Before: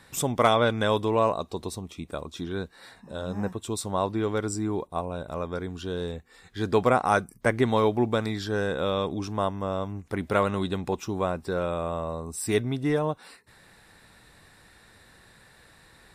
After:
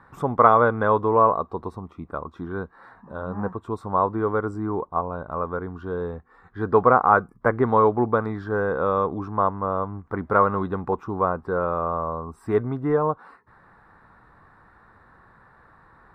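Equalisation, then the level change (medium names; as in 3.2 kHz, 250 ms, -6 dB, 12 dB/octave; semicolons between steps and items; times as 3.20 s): FFT filter 600 Hz 0 dB, 1.2 kHz +14 dB, 7.3 kHz -25 dB; dynamic bell 470 Hz, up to +6 dB, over -37 dBFS, Q 3.6; peaking EQ 2.7 kHz -13.5 dB 1.6 oct; +1.0 dB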